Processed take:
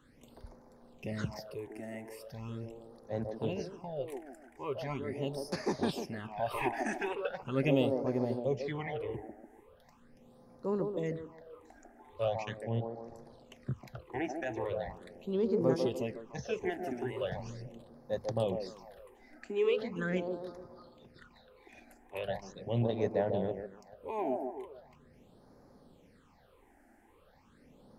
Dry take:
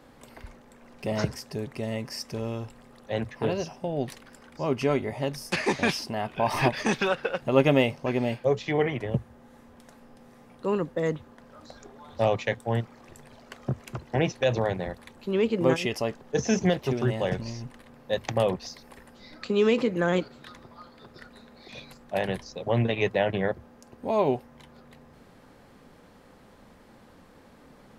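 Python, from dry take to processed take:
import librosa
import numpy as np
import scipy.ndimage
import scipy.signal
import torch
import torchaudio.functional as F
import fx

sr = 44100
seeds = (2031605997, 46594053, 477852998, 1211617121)

y = fx.echo_wet_bandpass(x, sr, ms=146, feedback_pct=44, hz=540.0, wet_db=-3.0)
y = fx.phaser_stages(y, sr, stages=8, low_hz=140.0, high_hz=2900.0, hz=0.4, feedback_pct=30)
y = fx.env_lowpass_down(y, sr, base_hz=2900.0, full_db=-25.0, at=(12.59, 13.54))
y = F.gain(torch.from_numpy(y), -7.5).numpy()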